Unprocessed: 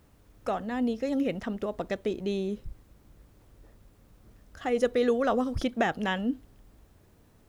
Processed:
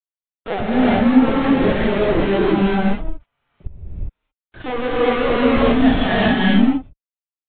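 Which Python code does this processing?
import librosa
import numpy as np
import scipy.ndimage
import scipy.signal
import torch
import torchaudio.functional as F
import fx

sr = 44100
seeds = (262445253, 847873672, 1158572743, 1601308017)

y = fx.wiener(x, sr, points=9)
y = fx.peak_eq(y, sr, hz=1100.0, db=-12.0, octaves=1.3)
y = fx.fuzz(y, sr, gain_db=47.0, gate_db=-46.0)
y = fx.chorus_voices(y, sr, voices=4, hz=0.49, base_ms=29, depth_ms=2.4, mix_pct=55)
y = fx.lpc_vocoder(y, sr, seeds[0], excitation='pitch_kept', order=16)
y = fx.rev_gated(y, sr, seeds[1], gate_ms=430, shape='rising', drr_db=-7.5)
y = y * 10.0 ** (-4.0 / 20.0)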